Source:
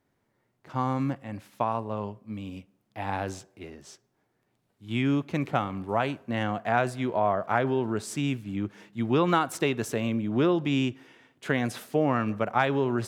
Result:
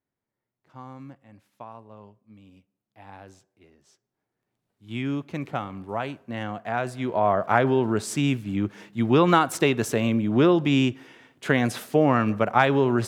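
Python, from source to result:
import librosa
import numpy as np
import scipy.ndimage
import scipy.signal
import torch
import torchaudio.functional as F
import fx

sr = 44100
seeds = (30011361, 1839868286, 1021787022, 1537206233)

y = fx.gain(x, sr, db=fx.line((3.72, -14.0), (4.96, -3.0), (6.75, -3.0), (7.39, 5.0)))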